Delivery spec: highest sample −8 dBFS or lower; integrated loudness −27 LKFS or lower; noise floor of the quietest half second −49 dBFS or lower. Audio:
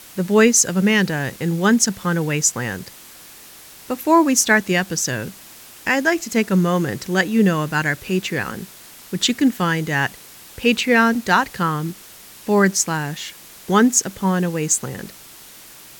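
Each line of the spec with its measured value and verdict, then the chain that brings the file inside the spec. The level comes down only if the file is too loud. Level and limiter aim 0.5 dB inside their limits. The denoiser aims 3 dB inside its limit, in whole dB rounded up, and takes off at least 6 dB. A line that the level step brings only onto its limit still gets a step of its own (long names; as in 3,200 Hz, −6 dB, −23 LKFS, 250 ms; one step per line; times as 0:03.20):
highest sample −4.0 dBFS: out of spec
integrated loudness −18.5 LKFS: out of spec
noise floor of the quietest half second −42 dBFS: out of spec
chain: level −9 dB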